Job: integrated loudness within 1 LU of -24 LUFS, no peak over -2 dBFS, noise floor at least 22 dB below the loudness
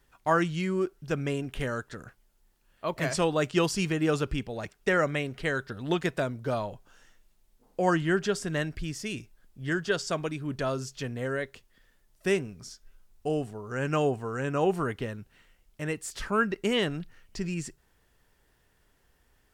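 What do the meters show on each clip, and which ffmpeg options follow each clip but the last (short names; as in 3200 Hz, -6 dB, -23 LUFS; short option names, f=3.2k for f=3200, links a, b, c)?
loudness -30.0 LUFS; peak -11.5 dBFS; loudness target -24.0 LUFS
-> -af "volume=6dB"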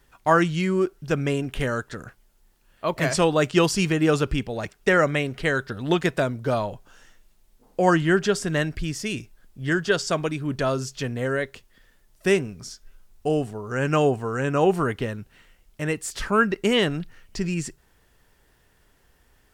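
loudness -24.0 LUFS; peak -5.5 dBFS; noise floor -62 dBFS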